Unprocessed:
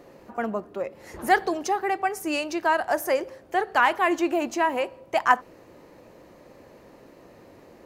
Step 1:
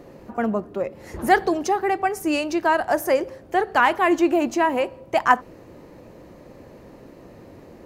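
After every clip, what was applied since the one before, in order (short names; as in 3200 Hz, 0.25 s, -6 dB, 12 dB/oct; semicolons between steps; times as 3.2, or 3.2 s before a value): low shelf 330 Hz +9 dB; gain +1.5 dB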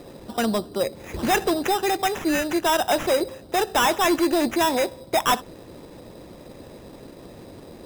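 sample-and-hold 10×; harmonic-percussive split percussive +4 dB; hard clip -16 dBFS, distortion -8 dB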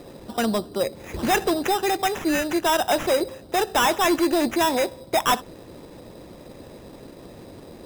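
nothing audible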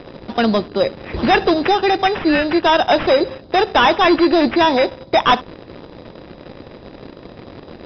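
in parallel at -5 dB: requantised 6-bit, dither none; on the sum: downsampling 11025 Hz; gain +3.5 dB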